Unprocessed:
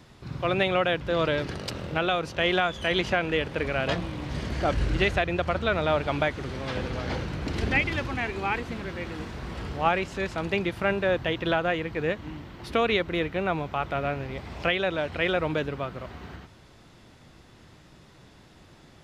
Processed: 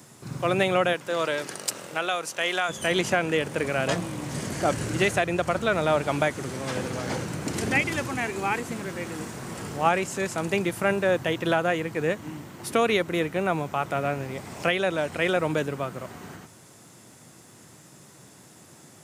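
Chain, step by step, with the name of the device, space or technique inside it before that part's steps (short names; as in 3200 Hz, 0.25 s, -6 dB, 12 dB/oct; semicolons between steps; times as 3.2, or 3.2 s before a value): 0.92–2.68 HPF 510 Hz -> 1000 Hz 6 dB/oct; budget condenser microphone (HPF 110 Hz 24 dB/oct; resonant high shelf 5700 Hz +13.5 dB, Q 1.5); gain +2 dB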